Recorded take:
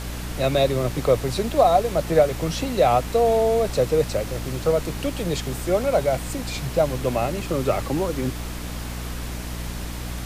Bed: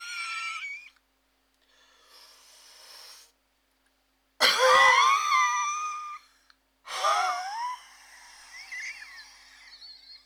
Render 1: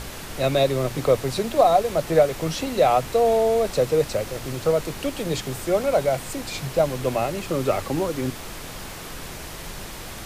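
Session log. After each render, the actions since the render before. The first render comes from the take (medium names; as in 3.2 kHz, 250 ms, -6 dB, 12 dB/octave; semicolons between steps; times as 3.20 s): hum notches 60/120/180/240/300 Hz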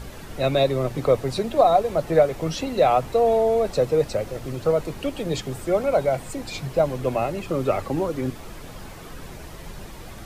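noise reduction 9 dB, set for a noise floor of -36 dBFS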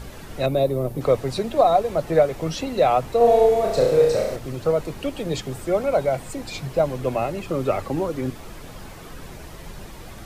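0.46–1.01 s: FFT filter 570 Hz 0 dB, 1.8 kHz -11 dB, 7.1 kHz -7 dB, 12 kHz +5 dB; 3.17–4.36 s: flutter echo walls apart 5.8 m, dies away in 0.81 s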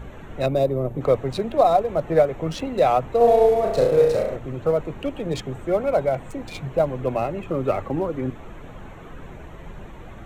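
local Wiener filter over 9 samples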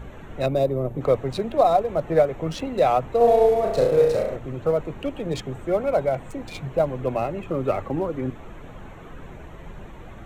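trim -1 dB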